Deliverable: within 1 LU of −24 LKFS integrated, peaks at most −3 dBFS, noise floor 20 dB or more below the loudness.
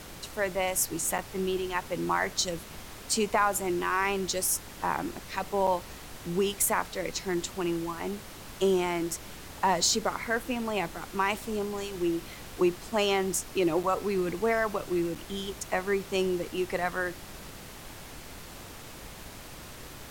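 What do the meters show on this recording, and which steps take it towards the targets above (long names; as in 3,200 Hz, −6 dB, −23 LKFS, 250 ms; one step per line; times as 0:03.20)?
number of dropouts 4; longest dropout 6.0 ms; background noise floor −45 dBFS; target noise floor −50 dBFS; integrated loudness −29.5 LKFS; sample peak −12.5 dBFS; target loudness −24.0 LKFS
→ repair the gap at 0:01.18/0:05.67/0:13.83/0:15.15, 6 ms
noise reduction from a noise print 6 dB
level +5.5 dB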